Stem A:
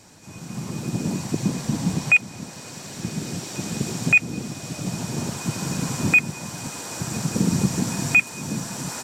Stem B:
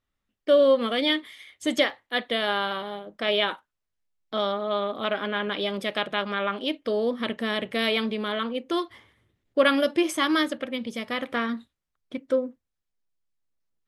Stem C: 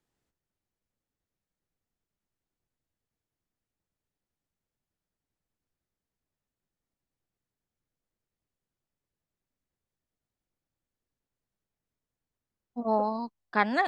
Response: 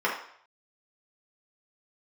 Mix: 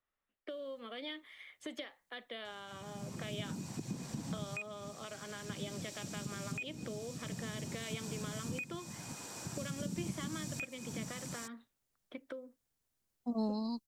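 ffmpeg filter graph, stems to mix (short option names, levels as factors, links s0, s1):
-filter_complex "[0:a]acompressor=threshold=0.0562:ratio=2.5,adelay=2450,volume=0.224[s0];[1:a]acrossover=split=410 2800:gain=0.251 1 0.224[s1][s2][s3];[s1][s2][s3]amix=inputs=3:normalize=0,acompressor=threshold=0.0112:ratio=2,volume=0.708[s4];[2:a]highshelf=f=3800:g=10.5,adelay=500,volume=1[s5];[s0][s4][s5]amix=inputs=3:normalize=0,acrossover=split=330|3000[s6][s7][s8];[s7]acompressor=threshold=0.00447:ratio=6[s9];[s6][s9][s8]amix=inputs=3:normalize=0"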